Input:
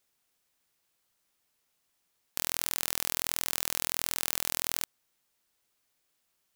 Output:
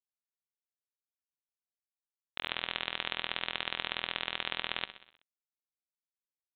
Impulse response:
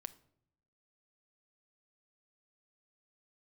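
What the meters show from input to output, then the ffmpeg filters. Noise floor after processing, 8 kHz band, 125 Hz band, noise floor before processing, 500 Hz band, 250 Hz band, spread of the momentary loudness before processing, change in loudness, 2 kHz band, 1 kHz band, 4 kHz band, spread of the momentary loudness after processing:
under -85 dBFS, under -40 dB, -4.5 dB, -77 dBFS, -0.5 dB, -2.5 dB, 5 LU, -5.0 dB, +3.5 dB, +1.5 dB, +2.0 dB, 6 LU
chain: -af "tremolo=f=25:d=0.667,equalizer=f=79:t=o:w=2.4:g=-9.5,aresample=8000,aeval=exprs='sgn(val(0))*max(abs(val(0))-0.00141,0)':c=same,aresample=44100,aemphasis=mode=production:type=75fm,aecho=1:1:63|126|189|252|315|378:0.2|0.116|0.0671|0.0389|0.0226|0.0131,volume=4.5dB"

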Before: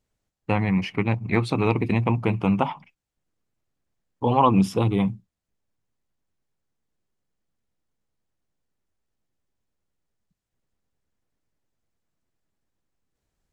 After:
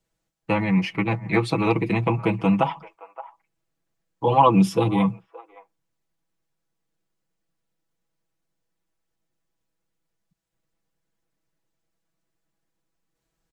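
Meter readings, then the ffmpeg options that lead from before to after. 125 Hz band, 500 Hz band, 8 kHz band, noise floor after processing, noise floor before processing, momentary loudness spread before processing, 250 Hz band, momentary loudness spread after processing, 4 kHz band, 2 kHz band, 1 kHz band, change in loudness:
-1.0 dB, +2.0 dB, +2.5 dB, -79 dBFS, -85 dBFS, 9 LU, +1.5 dB, 9 LU, +2.0 dB, +2.0 dB, +3.0 dB, +1.5 dB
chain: -filter_complex "[0:a]lowshelf=f=120:g=-5.5,aecho=1:1:6.1:0.82,acrossover=split=330|460|2000[a][b][c][d];[c]aecho=1:1:571:0.211[e];[a][b][e][d]amix=inputs=4:normalize=0"

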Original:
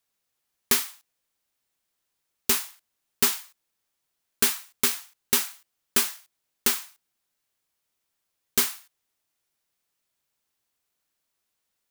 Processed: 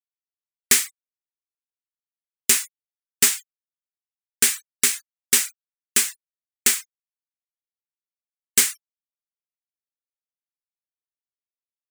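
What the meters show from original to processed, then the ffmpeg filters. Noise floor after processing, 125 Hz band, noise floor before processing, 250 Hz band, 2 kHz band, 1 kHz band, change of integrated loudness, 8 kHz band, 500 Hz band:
under -85 dBFS, n/a, -80 dBFS, -1.5 dB, +5.5 dB, -3.0 dB, +5.0 dB, +8.5 dB, -2.0 dB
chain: -af "afftfilt=real='re*gte(hypot(re,im),0.01)':imag='im*gte(hypot(re,im),0.01)':win_size=1024:overlap=0.75,agate=range=-33dB:threshold=-56dB:ratio=3:detection=peak,equalizer=f=1k:t=o:w=1:g=-6,equalizer=f=2k:t=o:w=1:g=9,equalizer=f=8k:t=o:w=1:g=12,dynaudnorm=f=230:g=3:m=11.5dB,volume=-1dB"

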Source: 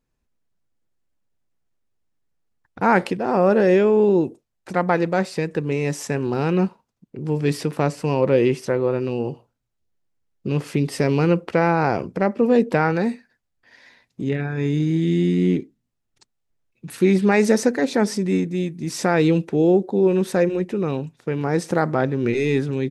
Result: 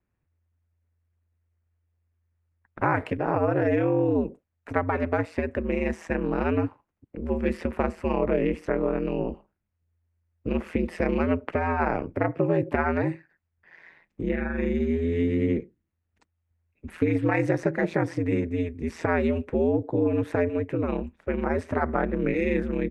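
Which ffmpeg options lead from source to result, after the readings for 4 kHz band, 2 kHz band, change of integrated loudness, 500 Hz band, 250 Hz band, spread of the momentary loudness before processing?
under -10 dB, -4.0 dB, -6.0 dB, -6.5 dB, -5.5 dB, 9 LU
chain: -filter_complex "[0:a]aeval=exprs='val(0)*sin(2*PI*84*n/s)':c=same,acrossover=split=190|7300[a][b][c];[a]acompressor=threshold=-30dB:ratio=4[d];[b]acompressor=threshold=-21dB:ratio=4[e];[c]acompressor=threshold=-49dB:ratio=4[f];[d][e][f]amix=inputs=3:normalize=0,highshelf=f=3.1k:t=q:w=1.5:g=-12"

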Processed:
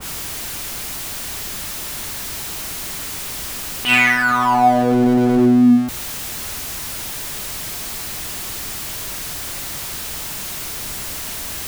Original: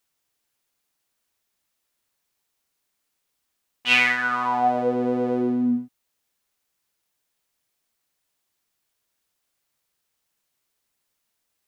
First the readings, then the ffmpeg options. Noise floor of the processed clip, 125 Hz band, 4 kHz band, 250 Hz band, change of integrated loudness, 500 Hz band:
-28 dBFS, +15.0 dB, +7.5 dB, +11.0 dB, +2.0 dB, +5.5 dB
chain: -filter_complex "[0:a]aeval=exprs='val(0)+0.5*0.0422*sgn(val(0))':c=same,lowshelf=f=170:g=11,bandreject=f=500:w=16,acrossover=split=300|2500[a][b][c];[c]asoftclip=type=hard:threshold=-25.5dB[d];[a][b][d]amix=inputs=3:normalize=0,adynamicequalizer=threshold=0.0141:dfrequency=2000:dqfactor=0.7:tfrequency=2000:tqfactor=0.7:attack=5:release=100:ratio=0.375:range=1.5:mode=cutabove:tftype=highshelf,volume=5.5dB"

